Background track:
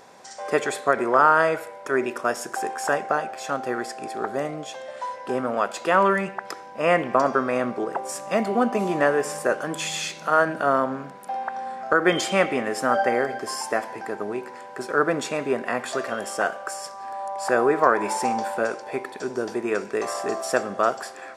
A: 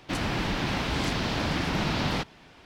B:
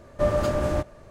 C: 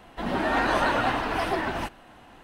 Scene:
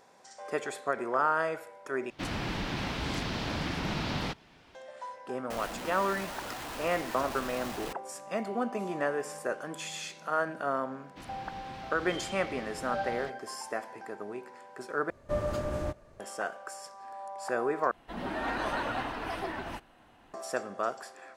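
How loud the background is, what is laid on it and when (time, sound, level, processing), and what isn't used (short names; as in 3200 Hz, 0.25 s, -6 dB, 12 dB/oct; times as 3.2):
background track -10.5 dB
2.1 replace with A -5.5 dB
5.5 add C -13 dB + infinite clipping
11.07 add A -18 dB
15.1 replace with B -8.5 dB
17.91 replace with C -9 dB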